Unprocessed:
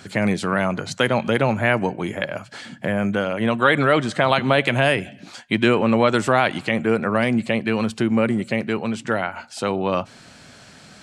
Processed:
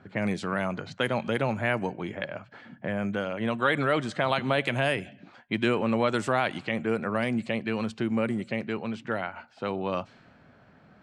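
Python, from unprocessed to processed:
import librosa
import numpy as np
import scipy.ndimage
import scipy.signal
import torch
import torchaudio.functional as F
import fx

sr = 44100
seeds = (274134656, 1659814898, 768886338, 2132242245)

y = fx.env_lowpass(x, sr, base_hz=1300.0, full_db=-15.0)
y = y * librosa.db_to_amplitude(-8.0)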